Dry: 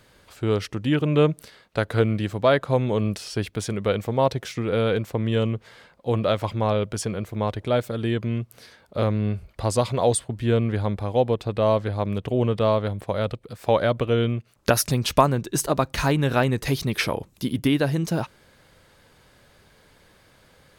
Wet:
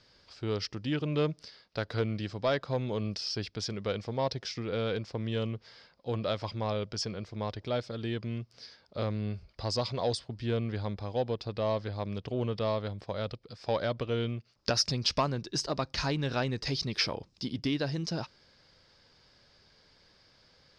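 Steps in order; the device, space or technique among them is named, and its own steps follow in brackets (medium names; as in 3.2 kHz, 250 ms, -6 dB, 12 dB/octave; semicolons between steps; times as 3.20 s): overdriven synthesiser ladder filter (saturation -8.5 dBFS, distortion -23 dB; four-pole ladder low-pass 5.4 kHz, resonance 75%); trim +2.5 dB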